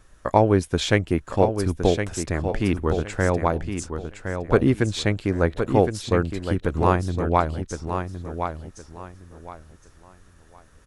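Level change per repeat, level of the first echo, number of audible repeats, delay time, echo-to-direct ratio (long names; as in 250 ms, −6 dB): −12.0 dB, −7.5 dB, 3, 1,064 ms, −7.0 dB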